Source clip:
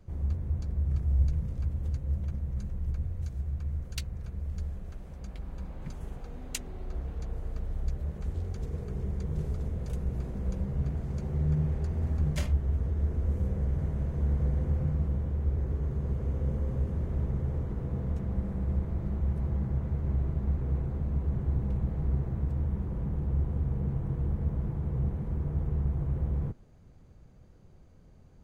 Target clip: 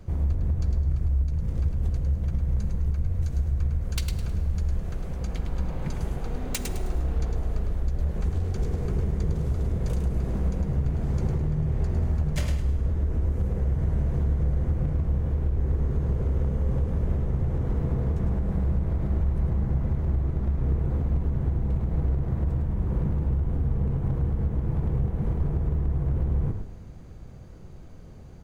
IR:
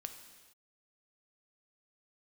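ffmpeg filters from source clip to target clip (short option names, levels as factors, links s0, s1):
-filter_complex "[0:a]acompressor=threshold=0.0251:ratio=16,aeval=exprs='0.0355*(abs(mod(val(0)/0.0355+3,4)-2)-1)':c=same,asplit=5[s0][s1][s2][s3][s4];[s1]adelay=105,afreqshift=-39,volume=0.501[s5];[s2]adelay=210,afreqshift=-78,volume=0.155[s6];[s3]adelay=315,afreqshift=-117,volume=0.0484[s7];[s4]adelay=420,afreqshift=-156,volume=0.015[s8];[s0][s5][s6][s7][s8]amix=inputs=5:normalize=0,asplit=2[s9][s10];[1:a]atrim=start_sample=2205[s11];[s10][s11]afir=irnorm=-1:irlink=0,volume=1.12[s12];[s9][s12]amix=inputs=2:normalize=0,volume=1.88"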